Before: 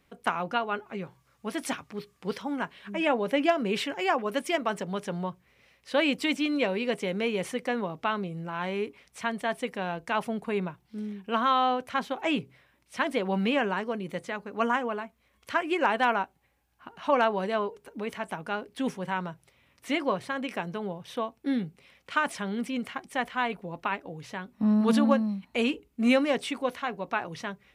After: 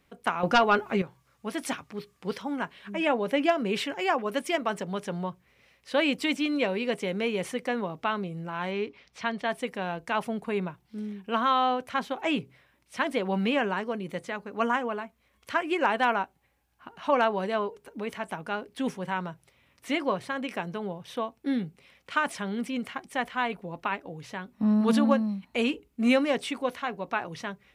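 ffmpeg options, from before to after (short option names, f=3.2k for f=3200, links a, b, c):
-filter_complex "[0:a]asettb=1/sr,asplit=3[a][b][c];[a]atrim=end=0.434[d];[b]atrim=start=0.43:end=1.02,asetpts=PTS-STARTPTS,afade=t=in:d=0.004:c=qsin,afade=t=out:st=0.586:d=0.004:c=qsin,aeval=exprs='0.266*sin(PI/2*2*val(0)/0.266)':c=same[e];[c]atrim=start=1.016[f];[d][e]acrossfade=d=0.004:c1=hsin:c2=qsin[g];[g][f]acrossfade=d=0.004:c1=qsin:c2=hsin,asettb=1/sr,asplit=3[h][i][j];[h]atrim=end=8.714[k];[i]atrim=start=8.71:end=9.49,asetpts=PTS-STARTPTS,afade=t=in:d=0.004:c=qsin,afade=t=out:st=0.776:d=0.004:c=qsin,highshelf=f=6.8k:t=q:w=1.5:g=-12[l];[j]atrim=start=9.486[m];[k][l]acrossfade=d=0.004:c1=hsin:c2=qsin[n];[n][m]acrossfade=d=0.004:c1=qsin:c2=hsin"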